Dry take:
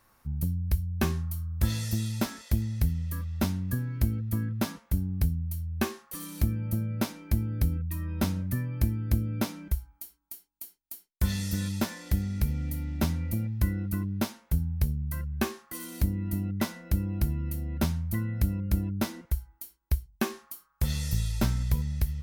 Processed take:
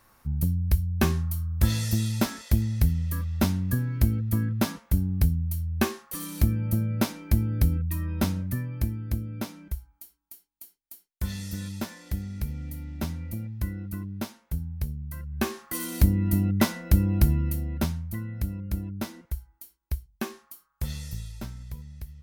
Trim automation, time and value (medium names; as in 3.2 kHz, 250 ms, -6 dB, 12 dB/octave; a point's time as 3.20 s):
7.92 s +4 dB
9.28 s -4 dB
15.22 s -4 dB
15.65 s +7 dB
17.34 s +7 dB
18.11 s -3.5 dB
20.85 s -3.5 dB
21.51 s -12 dB